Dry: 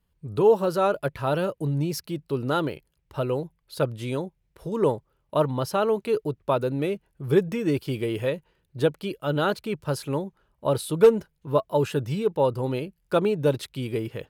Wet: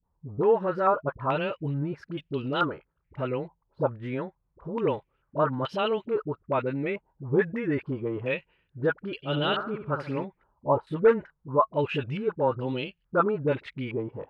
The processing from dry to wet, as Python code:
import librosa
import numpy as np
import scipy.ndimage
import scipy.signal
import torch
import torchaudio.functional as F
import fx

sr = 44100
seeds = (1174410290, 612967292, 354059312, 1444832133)

y = fx.peak_eq(x, sr, hz=260.0, db=4.0, octaves=0.23)
y = fx.dispersion(y, sr, late='highs', ms=44.0, hz=570.0)
y = fx.vibrato(y, sr, rate_hz=0.94, depth_cents=7.5)
y = fx.room_flutter(y, sr, wall_m=11.7, rt60_s=0.49, at=(9.22, 10.23), fade=0.02)
y = fx.filter_held_lowpass(y, sr, hz=2.3, low_hz=930.0, high_hz=3000.0)
y = y * librosa.db_to_amplitude(-4.5)